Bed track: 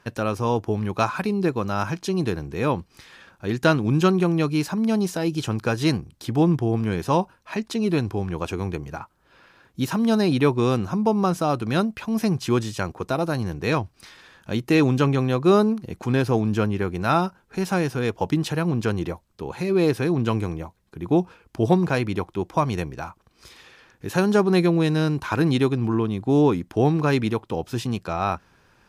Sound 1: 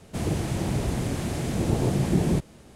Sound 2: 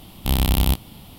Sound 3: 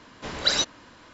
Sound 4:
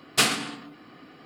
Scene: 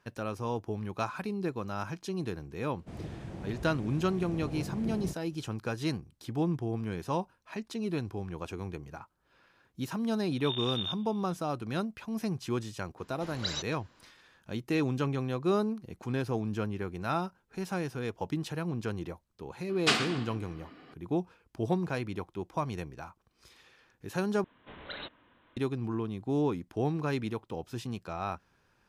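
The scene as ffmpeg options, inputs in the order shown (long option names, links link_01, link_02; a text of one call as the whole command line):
ffmpeg -i bed.wav -i cue0.wav -i cue1.wav -i cue2.wav -i cue3.wav -filter_complex "[3:a]asplit=2[link_01][link_02];[0:a]volume=-11dB[link_03];[1:a]aemphasis=mode=reproduction:type=75fm[link_04];[2:a]lowpass=frequency=3100:width_type=q:width=0.5098,lowpass=frequency=3100:width_type=q:width=0.6013,lowpass=frequency=3100:width_type=q:width=0.9,lowpass=frequency=3100:width_type=q:width=2.563,afreqshift=-3700[link_05];[4:a]lowpass=5300[link_06];[link_02]aresample=8000,aresample=44100[link_07];[link_03]asplit=2[link_08][link_09];[link_08]atrim=end=24.444[link_10];[link_07]atrim=end=1.13,asetpts=PTS-STARTPTS,volume=-13.5dB[link_11];[link_09]atrim=start=25.566[link_12];[link_04]atrim=end=2.75,asetpts=PTS-STARTPTS,volume=-15dB,afade=type=in:duration=0.004:curve=hsin,afade=type=out:start_time=2.746:duration=0.004:curve=hsin,adelay=2730[link_13];[link_05]atrim=end=1.18,asetpts=PTS-STARTPTS,volume=-18dB,afade=type=in:duration=0.004:curve=hsin,afade=type=out:start_time=1.176:duration=0.004:curve=hsin,adelay=448938S[link_14];[link_01]atrim=end=1.13,asetpts=PTS-STARTPTS,volume=-12.5dB,afade=type=in:duration=0.004:curve=hsin,afade=type=out:start_time=1.126:duration=0.004:curve=hsin,adelay=12980[link_15];[link_06]atrim=end=1.25,asetpts=PTS-STARTPTS,volume=-4dB,afade=type=in:duration=0.004:curve=hsin,afade=type=out:start_time=1.246:duration=0.004:curve=hsin,adelay=19690[link_16];[link_10][link_11]acrossfade=duration=0.004:curve1=hsin:curve2=hsin[link_17];[link_17][link_12]acrossfade=duration=0.004:curve1=hsin:curve2=hsin[link_18];[link_18][link_13][link_14][link_15][link_16]amix=inputs=5:normalize=0" out.wav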